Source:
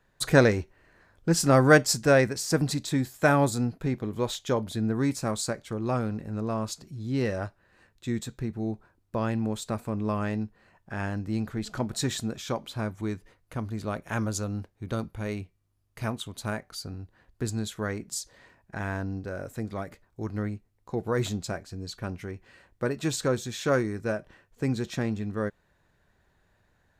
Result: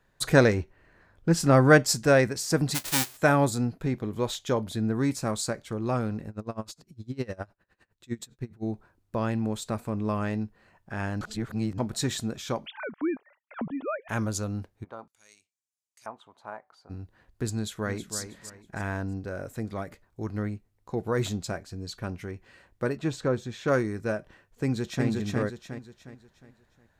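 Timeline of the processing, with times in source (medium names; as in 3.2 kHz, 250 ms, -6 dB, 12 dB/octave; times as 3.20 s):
0.54–1.84 s: tone controls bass +2 dB, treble -5 dB
2.74–3.16 s: formants flattened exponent 0.1
6.29–8.63 s: logarithmic tremolo 9.8 Hz, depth 26 dB
11.21–11.78 s: reverse
12.66–14.09 s: formants replaced by sine waves
14.83–16.89 s: LFO band-pass square 0.93 Hz -> 0.16 Hz 880–7100 Hz
17.54–18.17 s: echo throw 320 ms, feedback 30%, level -9.5 dB
22.97–23.68 s: low-pass 1.8 kHz 6 dB/octave
24.63–25.06 s: echo throw 360 ms, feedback 40%, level -2 dB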